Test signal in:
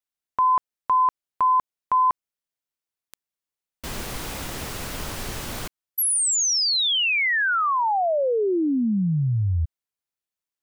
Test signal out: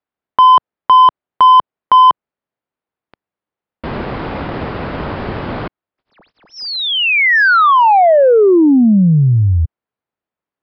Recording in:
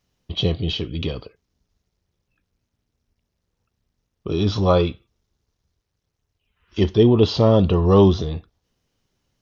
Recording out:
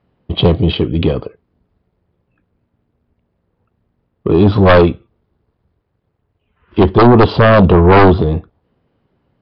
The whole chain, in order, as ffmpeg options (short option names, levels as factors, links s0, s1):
-af "highpass=f=120:p=1,adynamicsmooth=sensitivity=0.5:basefreq=1500,aeval=exprs='0.708*sin(PI/2*3.55*val(0)/0.708)':c=same,aresample=11025,aresample=44100"